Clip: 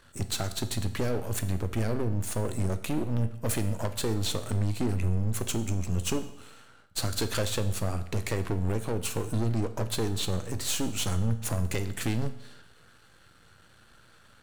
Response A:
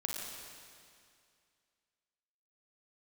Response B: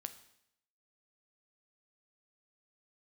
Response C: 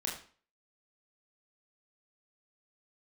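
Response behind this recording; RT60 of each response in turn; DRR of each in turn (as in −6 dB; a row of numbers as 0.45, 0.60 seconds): B; 2.3, 0.75, 0.40 seconds; −1.0, 9.0, −3.0 decibels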